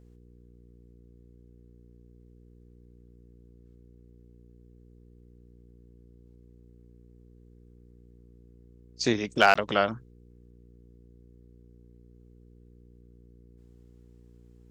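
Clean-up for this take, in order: clip repair -6.5 dBFS; de-hum 59.6 Hz, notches 8; interpolate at 9.54 s, 15 ms

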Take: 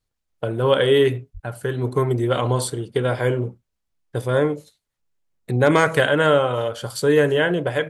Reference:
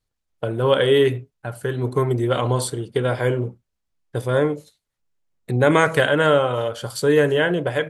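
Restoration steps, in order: clip repair -4 dBFS; 1.33–1.45 s: high-pass 140 Hz 24 dB/octave

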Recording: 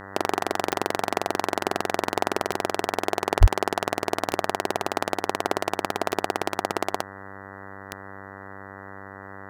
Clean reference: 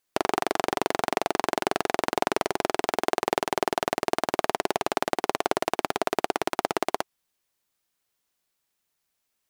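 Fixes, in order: de-click; de-hum 97.6 Hz, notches 20; 3.40–3.52 s: high-pass 140 Hz 24 dB/octave

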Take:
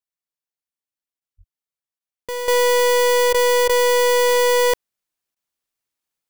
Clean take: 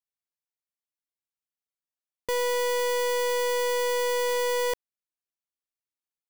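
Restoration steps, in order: 1.37–1.49 s: high-pass 140 Hz 24 dB/octave; interpolate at 1.20/1.99/3.33/3.68/5.35 s, 12 ms; 2.48 s: gain correction -10 dB

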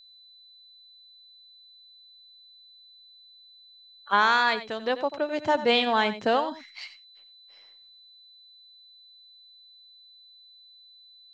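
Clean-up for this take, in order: band-stop 4 kHz, Q 30; inverse comb 90 ms -13 dB

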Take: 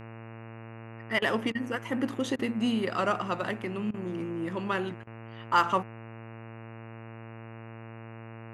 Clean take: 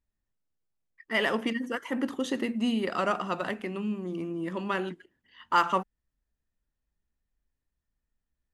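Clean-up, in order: de-hum 113.5 Hz, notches 25; interpolate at 1.19/1.52/2.36/3.91/5.04 s, 29 ms

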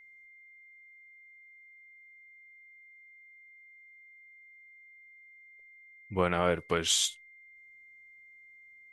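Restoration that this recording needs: band-stop 2.1 kHz, Q 30

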